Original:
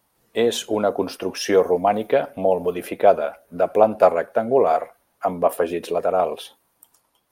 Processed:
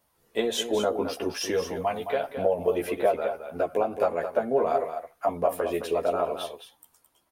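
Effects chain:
0:01.41–0:02.28: parametric band 1,100 Hz → 170 Hz −12 dB 1.8 octaves
downward compressor 6 to 1, threshold −17 dBFS, peak gain reduction 9 dB
multi-voice chorus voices 4, 0.43 Hz, delay 13 ms, depth 1.6 ms
single-tap delay 216 ms −9 dB

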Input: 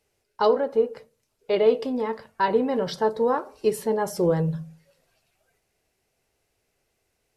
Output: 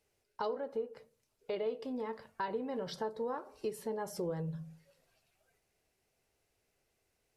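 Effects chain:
downward compressor 2.5 to 1, threshold −33 dBFS, peak gain reduction 13 dB
level −5.5 dB

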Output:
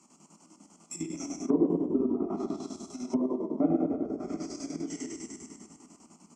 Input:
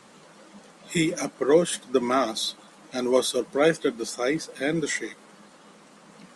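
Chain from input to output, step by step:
output level in coarse steps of 20 dB
high-shelf EQ 9,000 Hz +6 dB
echo with shifted repeats 132 ms, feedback 58%, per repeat −30 Hz, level −8.5 dB
dense smooth reverb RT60 1.9 s, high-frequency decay 0.85×, DRR −6 dB
square-wave tremolo 10 Hz, depth 60%, duty 60%
octave-band graphic EQ 125/250/500/1,000/2,000/4,000/8,000 Hz −12/+8/+5/−5/−10/−7/+8 dB
treble cut that deepens with the level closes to 650 Hz, closed at −17.5 dBFS
high-pass filter 62 Hz
phaser with its sweep stopped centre 2,500 Hz, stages 8

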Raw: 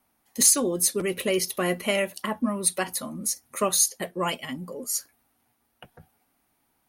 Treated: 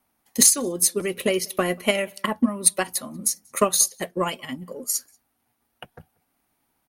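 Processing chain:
transient designer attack +8 dB, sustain −2 dB
slap from a distant wall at 32 metres, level −29 dB
level −1 dB

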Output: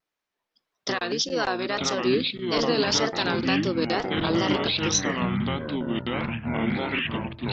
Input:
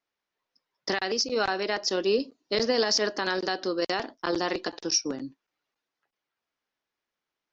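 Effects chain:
pitch-shifted copies added −7 semitones −6 dB
tape wow and flutter 130 cents
delay with pitch and tempo change per echo 551 ms, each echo −6 semitones, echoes 3

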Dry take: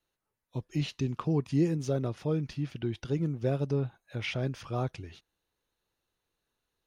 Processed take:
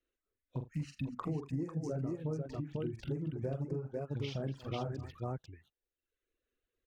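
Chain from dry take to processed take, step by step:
adaptive Wiener filter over 9 samples
phaser swept by the level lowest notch 150 Hz, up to 3,500 Hz, full sweep at −29.5 dBFS
0:00.64–0:01.15: Chebyshev band-stop filter 280–1,200 Hz, order 5
multi-tap delay 45/81/238/496 ms −5.5/−11/−11.5/−3.5 dB
reverb reduction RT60 0.9 s
downward compressor 6 to 1, threshold −34 dBFS, peak gain reduction 13 dB

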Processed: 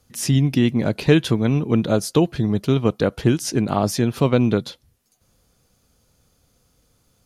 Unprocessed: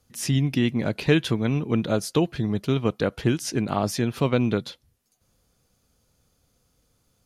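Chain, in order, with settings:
dynamic equaliser 2,200 Hz, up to −4 dB, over −43 dBFS, Q 0.79
level +5 dB

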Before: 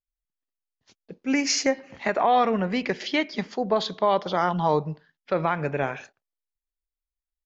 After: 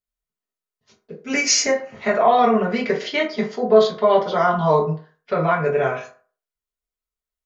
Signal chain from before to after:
0:01.24–0:01.73: high-shelf EQ 3,900 Hz → 6,500 Hz +10.5 dB
convolution reverb RT60 0.40 s, pre-delay 4 ms, DRR −5.5 dB
level −2 dB

